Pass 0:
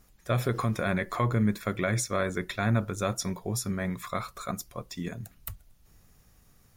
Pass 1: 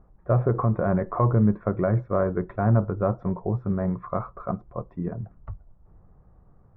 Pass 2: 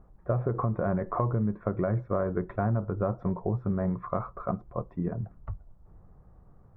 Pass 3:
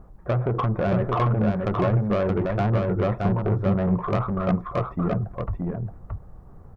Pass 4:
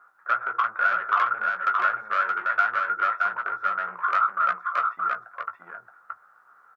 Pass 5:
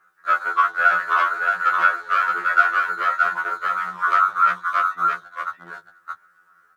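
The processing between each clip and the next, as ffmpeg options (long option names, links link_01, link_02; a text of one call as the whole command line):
ffmpeg -i in.wav -af "lowpass=frequency=1100:width=0.5412,lowpass=frequency=1100:width=1.3066,equalizer=frequency=250:width_type=o:width=0.25:gain=-7,volume=6.5dB" out.wav
ffmpeg -i in.wav -af "acompressor=threshold=-24dB:ratio=6" out.wav
ffmpeg -i in.wav -af "asoftclip=type=tanh:threshold=-26.5dB,aecho=1:1:623:0.668,volume=8.5dB" out.wav
ffmpeg -i in.wav -filter_complex "[0:a]highpass=frequency=1400:width_type=q:width=11,asplit=2[link_01][link_02];[link_02]adelay=17,volume=-8dB[link_03];[link_01][link_03]amix=inputs=2:normalize=0,volume=-1.5dB" out.wav
ffmpeg -i in.wav -filter_complex "[0:a]acrossover=split=470|1400[link_01][link_02][link_03];[link_02]aeval=exprs='sgn(val(0))*max(abs(val(0))-0.00251,0)':channel_layout=same[link_04];[link_01][link_04][link_03]amix=inputs=3:normalize=0,afftfilt=real='re*2*eq(mod(b,4),0)':imag='im*2*eq(mod(b,4),0)':win_size=2048:overlap=0.75,volume=8dB" out.wav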